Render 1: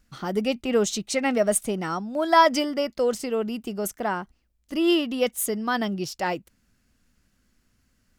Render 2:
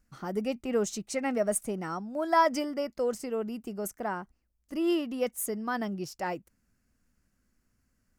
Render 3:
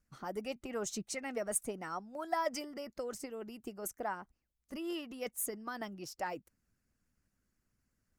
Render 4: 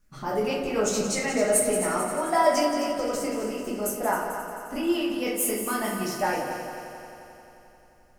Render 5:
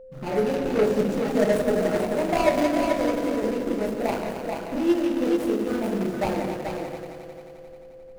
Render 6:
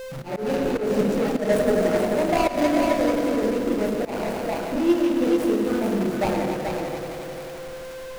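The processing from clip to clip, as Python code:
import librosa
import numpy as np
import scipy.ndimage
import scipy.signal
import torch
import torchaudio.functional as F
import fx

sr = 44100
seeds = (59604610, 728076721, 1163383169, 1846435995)

y1 = fx.peak_eq(x, sr, hz=3500.0, db=-9.5, octaves=0.84)
y1 = y1 * librosa.db_to_amplitude(-6.0)
y2 = fx.hpss(y1, sr, part='harmonic', gain_db=-10)
y2 = y2 * librosa.db_to_amplitude(-2.5)
y3 = fx.echo_heads(y2, sr, ms=88, heads='second and third', feedback_pct=63, wet_db=-10)
y3 = fx.room_shoebox(y3, sr, seeds[0], volume_m3=96.0, walls='mixed', distance_m=1.4)
y3 = y3 * librosa.db_to_amplitude(6.5)
y4 = scipy.ndimage.median_filter(y3, 41, mode='constant')
y4 = y4 + 10.0 ** (-5.5 / 20.0) * np.pad(y4, (int(434 * sr / 1000.0), 0))[:len(y4)]
y4 = y4 + 10.0 ** (-47.0 / 20.0) * np.sin(2.0 * np.pi * 520.0 * np.arange(len(y4)) / sr)
y4 = y4 * librosa.db_to_amplitude(4.5)
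y5 = y4 + 0.5 * 10.0 ** (-34.0 / 20.0) * np.sign(y4)
y5 = fx.auto_swell(y5, sr, attack_ms=155.0)
y5 = y5 + 10.0 ** (-13.0 / 20.0) * np.pad(y5, (int(109 * sr / 1000.0), 0))[:len(y5)]
y5 = y5 * librosa.db_to_amplitude(1.0)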